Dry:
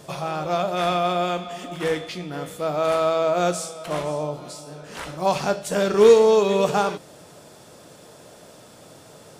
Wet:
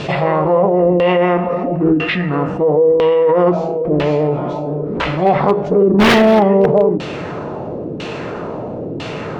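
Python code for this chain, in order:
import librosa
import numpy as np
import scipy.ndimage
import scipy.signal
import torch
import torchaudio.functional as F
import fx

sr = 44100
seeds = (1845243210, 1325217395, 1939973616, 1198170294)

y = fx.formant_shift(x, sr, semitones=-4)
y = fx.filter_lfo_lowpass(y, sr, shape='saw_down', hz=1.0, low_hz=340.0, high_hz=3300.0, q=1.6)
y = 10.0 ** (-10.5 / 20.0) * (np.abs((y / 10.0 ** (-10.5 / 20.0) + 3.0) % 4.0 - 2.0) - 1.0)
y = fx.dynamic_eq(y, sr, hz=8000.0, q=1.0, threshold_db=-48.0, ratio=4.0, max_db=-7)
y = fx.env_flatten(y, sr, amount_pct=50)
y = F.gain(torch.from_numpy(y), 5.5).numpy()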